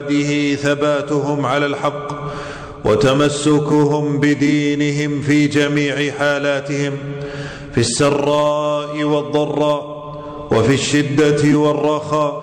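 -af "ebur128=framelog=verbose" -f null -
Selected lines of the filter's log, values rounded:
Integrated loudness:
  I:         -16.6 LUFS
  Threshold: -26.8 LUFS
Loudness range:
  LRA:         2.5 LU
  Threshold: -36.9 LUFS
  LRA low:   -18.0 LUFS
  LRA high:  -15.5 LUFS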